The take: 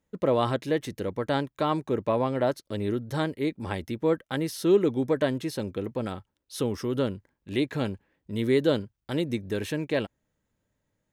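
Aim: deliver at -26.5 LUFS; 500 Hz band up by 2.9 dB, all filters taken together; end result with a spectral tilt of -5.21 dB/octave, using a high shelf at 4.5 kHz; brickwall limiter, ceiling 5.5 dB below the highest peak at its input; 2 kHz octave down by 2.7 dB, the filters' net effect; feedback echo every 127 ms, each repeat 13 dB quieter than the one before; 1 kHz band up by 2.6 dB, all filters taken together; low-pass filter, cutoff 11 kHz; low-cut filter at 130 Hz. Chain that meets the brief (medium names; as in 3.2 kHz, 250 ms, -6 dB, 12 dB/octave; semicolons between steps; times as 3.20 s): high-pass 130 Hz; low-pass 11 kHz; peaking EQ 500 Hz +3 dB; peaking EQ 1 kHz +3.5 dB; peaking EQ 2 kHz -4 dB; treble shelf 4.5 kHz -6 dB; peak limiter -14.5 dBFS; feedback delay 127 ms, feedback 22%, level -13 dB; trim +1.5 dB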